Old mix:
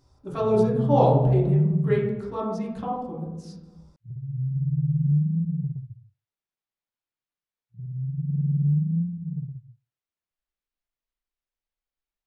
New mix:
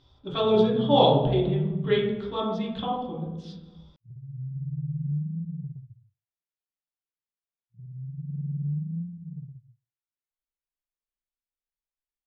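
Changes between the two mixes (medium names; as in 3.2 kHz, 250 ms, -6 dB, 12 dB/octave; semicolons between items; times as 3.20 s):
speech: add resonant low-pass 3.4 kHz, resonance Q 15; background -7.5 dB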